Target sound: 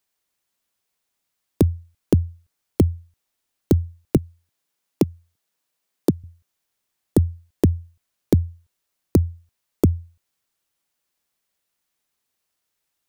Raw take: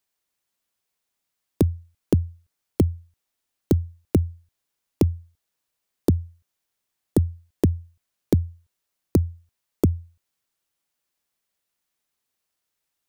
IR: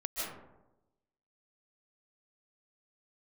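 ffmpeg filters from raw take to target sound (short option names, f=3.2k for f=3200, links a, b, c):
-filter_complex "[0:a]asettb=1/sr,asplit=3[a][b][c];[a]atrim=end=4.174[d];[b]atrim=start=4.17:end=6.24,asetpts=PTS-STARTPTS,afade=t=in:d=0.004:c=qsin,afade=t=out:st=2.066:d=0.004:c=qsin,highpass=f=130:w=0.5412,highpass=f=130:w=1.3066[e];[c]atrim=start=6.236[f];[d][e]acrossfade=d=0.004:c1=hsin:c2=qsin[g];[g][f]acrossfade=d=0.004:c1=qsin:c2=hsin,volume=2.5dB"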